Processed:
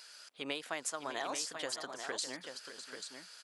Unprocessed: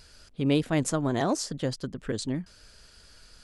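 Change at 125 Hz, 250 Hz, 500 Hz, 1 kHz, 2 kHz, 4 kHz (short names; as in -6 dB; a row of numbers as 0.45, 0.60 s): -31.5, -20.5, -12.0, -7.0, -2.5, -2.0 dB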